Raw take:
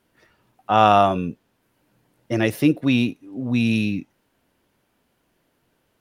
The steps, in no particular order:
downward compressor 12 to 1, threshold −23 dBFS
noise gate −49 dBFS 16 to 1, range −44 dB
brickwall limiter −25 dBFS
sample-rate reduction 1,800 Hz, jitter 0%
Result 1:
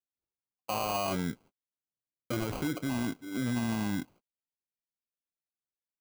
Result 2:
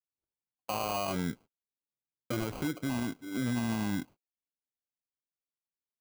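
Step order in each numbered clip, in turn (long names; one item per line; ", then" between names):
noise gate, then sample-rate reduction, then brickwall limiter, then downward compressor
downward compressor, then sample-rate reduction, then brickwall limiter, then noise gate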